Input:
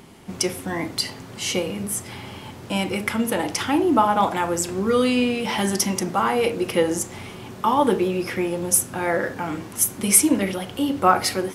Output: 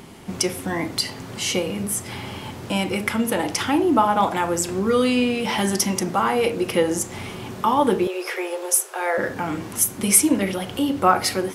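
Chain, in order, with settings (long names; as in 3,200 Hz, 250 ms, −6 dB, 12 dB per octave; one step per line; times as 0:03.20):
0:08.07–0:09.18: elliptic high-pass filter 390 Hz, stop band 40 dB
in parallel at −2 dB: downward compressor, threshold −31 dBFS, peak gain reduction 19.5 dB
on the sum: level −1 dB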